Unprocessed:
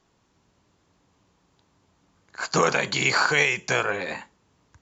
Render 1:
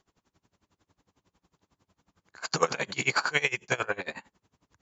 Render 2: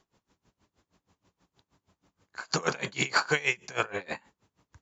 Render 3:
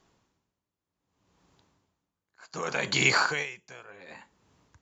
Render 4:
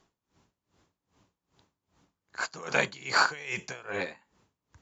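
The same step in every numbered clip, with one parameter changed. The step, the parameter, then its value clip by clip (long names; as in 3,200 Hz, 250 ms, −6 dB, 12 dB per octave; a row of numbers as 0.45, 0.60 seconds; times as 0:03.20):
tremolo with a sine in dB, speed: 11, 6.3, 0.66, 2.5 Hertz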